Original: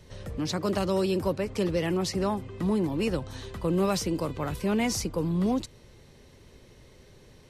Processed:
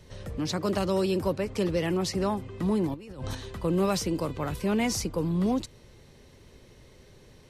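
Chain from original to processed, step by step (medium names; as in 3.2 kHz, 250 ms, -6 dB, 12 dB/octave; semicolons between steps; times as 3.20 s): 2.94–3.35 s: compressor with a negative ratio -39 dBFS, ratio -1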